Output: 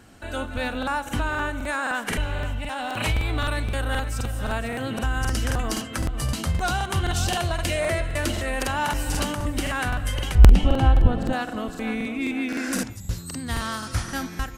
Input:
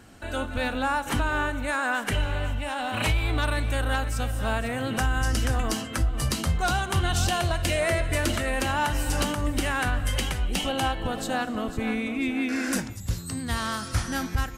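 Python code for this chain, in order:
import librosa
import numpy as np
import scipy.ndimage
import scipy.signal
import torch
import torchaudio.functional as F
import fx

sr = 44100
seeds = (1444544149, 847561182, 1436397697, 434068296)

y = fx.riaa(x, sr, side='playback', at=(10.35, 11.33))
y = fx.buffer_crackle(y, sr, first_s=0.78, period_s=0.26, block=2048, kind='repeat')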